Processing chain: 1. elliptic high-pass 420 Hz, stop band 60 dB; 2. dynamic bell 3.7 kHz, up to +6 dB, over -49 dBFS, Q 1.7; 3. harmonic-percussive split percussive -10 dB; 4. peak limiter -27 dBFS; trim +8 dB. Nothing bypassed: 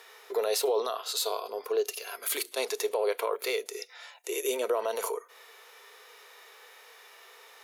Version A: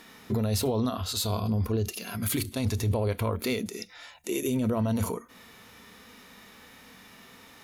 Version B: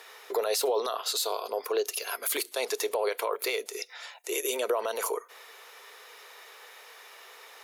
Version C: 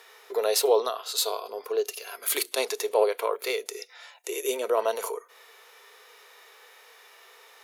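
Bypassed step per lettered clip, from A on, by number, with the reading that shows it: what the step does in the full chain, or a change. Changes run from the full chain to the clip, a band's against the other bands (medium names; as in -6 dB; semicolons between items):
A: 1, 250 Hz band +18.0 dB; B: 3, 500 Hz band -2.0 dB; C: 4, crest factor change +7.0 dB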